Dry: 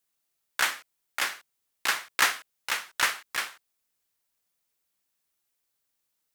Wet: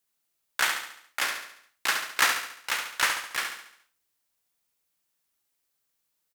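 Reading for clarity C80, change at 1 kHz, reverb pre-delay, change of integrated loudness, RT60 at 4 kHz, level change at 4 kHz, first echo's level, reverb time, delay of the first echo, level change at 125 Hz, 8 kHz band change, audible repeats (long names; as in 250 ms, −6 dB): no reverb audible, +1.0 dB, no reverb audible, +0.5 dB, no reverb audible, +1.0 dB, −6.5 dB, no reverb audible, 70 ms, can't be measured, +1.0 dB, 5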